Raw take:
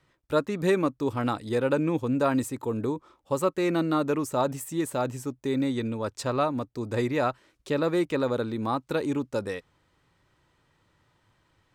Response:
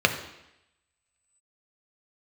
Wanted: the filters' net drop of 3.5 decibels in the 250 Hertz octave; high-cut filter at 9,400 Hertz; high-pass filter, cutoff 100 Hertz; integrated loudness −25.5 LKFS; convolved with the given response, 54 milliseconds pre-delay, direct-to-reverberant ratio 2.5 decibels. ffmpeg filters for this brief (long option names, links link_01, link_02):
-filter_complex "[0:a]highpass=100,lowpass=9400,equalizer=frequency=250:width_type=o:gain=-4.5,asplit=2[link_01][link_02];[1:a]atrim=start_sample=2205,adelay=54[link_03];[link_02][link_03]afir=irnorm=-1:irlink=0,volume=-19.5dB[link_04];[link_01][link_04]amix=inputs=2:normalize=0,volume=2.5dB"